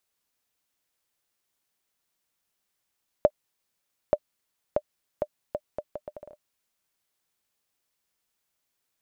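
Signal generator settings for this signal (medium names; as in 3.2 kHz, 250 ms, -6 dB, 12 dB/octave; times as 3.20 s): bouncing ball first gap 0.88 s, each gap 0.72, 598 Hz, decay 54 ms -6.5 dBFS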